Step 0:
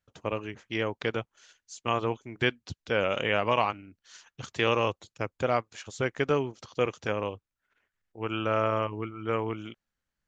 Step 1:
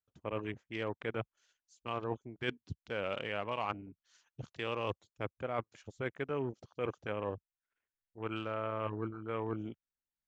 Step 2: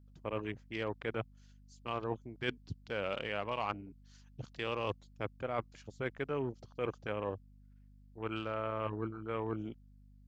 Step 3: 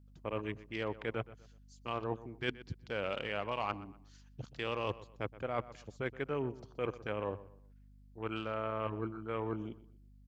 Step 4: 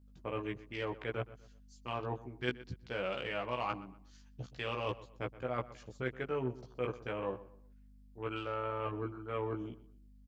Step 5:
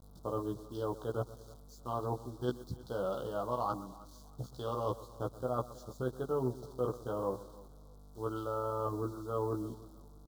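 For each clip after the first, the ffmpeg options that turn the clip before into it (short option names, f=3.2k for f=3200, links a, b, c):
-af "afwtdn=0.00891,areverse,acompressor=threshold=-33dB:ratio=6,areverse"
-af "equalizer=f=4.7k:w=3.2:g=5.5,aeval=exprs='val(0)+0.00126*(sin(2*PI*50*n/s)+sin(2*PI*2*50*n/s)/2+sin(2*PI*3*50*n/s)/3+sin(2*PI*4*50*n/s)/4+sin(2*PI*5*50*n/s)/5)':c=same"
-filter_complex "[0:a]asplit=2[a][b];[b]adelay=123,lowpass=f=2.9k:p=1,volume=-16.5dB,asplit=2[c][d];[d]adelay=123,lowpass=f=2.9k:p=1,volume=0.32,asplit=2[e][f];[f]adelay=123,lowpass=f=2.9k:p=1,volume=0.32[g];[a][c][e][g]amix=inputs=4:normalize=0"
-filter_complex "[0:a]asplit=2[a][b];[b]adelay=16,volume=-3dB[c];[a][c]amix=inputs=2:normalize=0,volume=-2dB"
-af "acrusher=bits=9:mix=0:aa=0.000001,asuperstop=centerf=2200:order=8:qfactor=0.96,aecho=1:1:317|634:0.0891|0.0285,volume=2.5dB"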